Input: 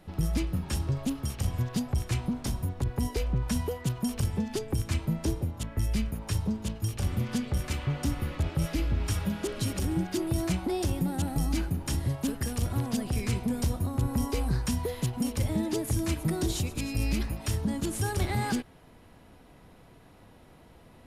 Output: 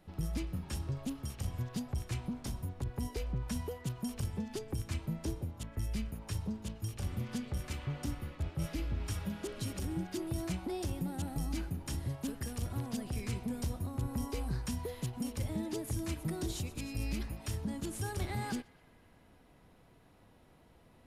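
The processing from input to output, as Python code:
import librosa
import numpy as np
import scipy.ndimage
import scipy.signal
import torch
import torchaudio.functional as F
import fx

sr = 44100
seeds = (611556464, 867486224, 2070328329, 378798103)

y = fx.echo_banded(x, sr, ms=124, feedback_pct=76, hz=2000.0, wet_db=-22.0)
y = fx.band_widen(y, sr, depth_pct=70, at=(8.06, 8.69))
y = y * librosa.db_to_amplitude(-8.0)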